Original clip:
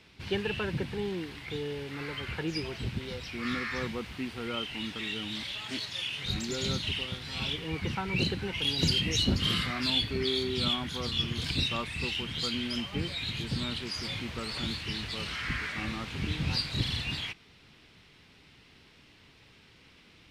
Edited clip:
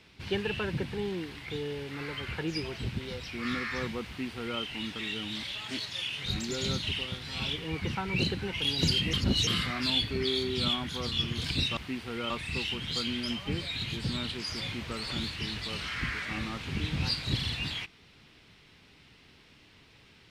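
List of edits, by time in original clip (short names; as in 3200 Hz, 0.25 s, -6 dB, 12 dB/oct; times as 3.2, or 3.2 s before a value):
4.07–4.6 copy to 11.77
9.13–9.47 reverse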